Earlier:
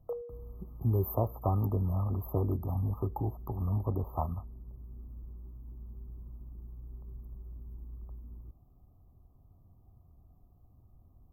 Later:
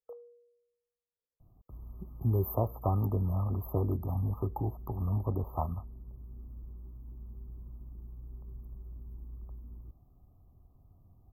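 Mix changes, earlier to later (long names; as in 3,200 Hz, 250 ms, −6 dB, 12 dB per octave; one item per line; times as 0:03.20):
speech: entry +1.40 s
background −10.0 dB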